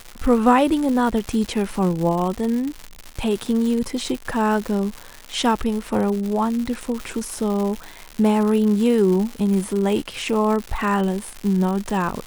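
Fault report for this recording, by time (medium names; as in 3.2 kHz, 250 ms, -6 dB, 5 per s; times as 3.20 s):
crackle 220 per s -25 dBFS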